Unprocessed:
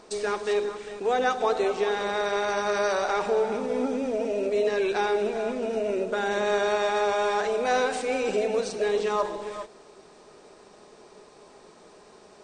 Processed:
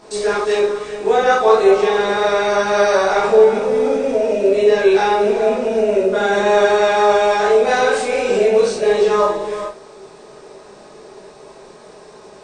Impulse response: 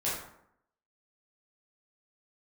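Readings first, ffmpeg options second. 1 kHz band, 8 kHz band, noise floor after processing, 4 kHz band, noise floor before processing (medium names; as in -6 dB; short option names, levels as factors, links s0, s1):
+10.0 dB, +8.5 dB, -42 dBFS, +9.0 dB, -53 dBFS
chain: -filter_complex "[1:a]atrim=start_sample=2205,atrim=end_sample=4410[s0];[0:a][s0]afir=irnorm=-1:irlink=0,volume=1.58"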